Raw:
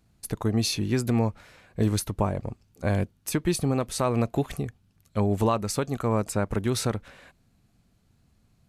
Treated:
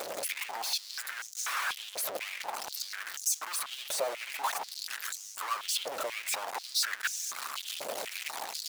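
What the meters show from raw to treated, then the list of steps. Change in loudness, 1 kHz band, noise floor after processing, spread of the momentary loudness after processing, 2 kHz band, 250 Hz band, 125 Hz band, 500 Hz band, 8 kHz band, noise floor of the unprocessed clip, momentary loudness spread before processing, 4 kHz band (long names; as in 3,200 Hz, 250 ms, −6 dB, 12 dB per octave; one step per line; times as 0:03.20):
−6.5 dB, −3.0 dB, −46 dBFS, 6 LU, +4.5 dB, −31.5 dB, below −40 dB, −11.5 dB, +2.5 dB, −66 dBFS, 9 LU, +2.5 dB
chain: sign of each sample alone
harmonic and percussive parts rebalanced harmonic −15 dB
high-pass on a step sequencer 4.1 Hz 580–6,300 Hz
level −3.5 dB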